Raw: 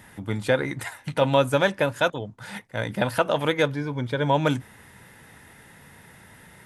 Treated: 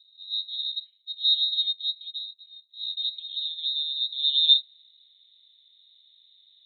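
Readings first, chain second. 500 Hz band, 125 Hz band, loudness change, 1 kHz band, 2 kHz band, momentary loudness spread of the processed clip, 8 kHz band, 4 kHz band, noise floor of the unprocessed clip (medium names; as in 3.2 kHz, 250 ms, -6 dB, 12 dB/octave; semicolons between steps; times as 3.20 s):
under -40 dB, under -40 dB, +0.5 dB, under -40 dB, under -40 dB, 16 LU, under -35 dB, +13.0 dB, -51 dBFS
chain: transient shaper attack -11 dB, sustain +2 dB; low-pass sweep 170 Hz -> 340 Hz, 2.46–5.19 s; frequency inversion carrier 3.9 kHz; upward expansion 1.5:1, over -34 dBFS; trim +2 dB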